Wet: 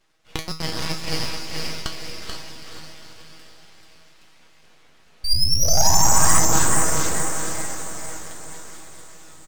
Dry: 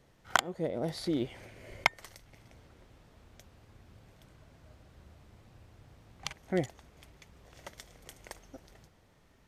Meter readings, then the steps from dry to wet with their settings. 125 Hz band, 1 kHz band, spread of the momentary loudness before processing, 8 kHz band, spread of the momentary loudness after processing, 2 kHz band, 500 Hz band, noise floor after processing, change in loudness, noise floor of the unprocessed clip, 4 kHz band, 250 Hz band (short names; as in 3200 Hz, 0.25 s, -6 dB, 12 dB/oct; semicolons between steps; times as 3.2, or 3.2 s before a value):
+14.5 dB, +13.0 dB, 21 LU, +28.0 dB, 22 LU, +6.5 dB, +7.0 dB, -52 dBFS, +13.0 dB, -64 dBFS, +17.5 dB, +6.5 dB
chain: rattling part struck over -40 dBFS, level -12 dBFS; expander -56 dBFS; LPF 5800 Hz; tilt +2 dB/oct; in parallel at -3 dB: upward compressor, threshold -36 dBFS; on the sum: painted sound rise, 5.24–6.4, 2300–4600 Hz -8 dBFS; resonator 160 Hz, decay 0.32 s, harmonics all, mix 90%; diffused feedback echo 0.471 s, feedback 52%, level -3 dB; full-wave rectifier; echo 0.436 s -6.5 dB; gain +3.5 dB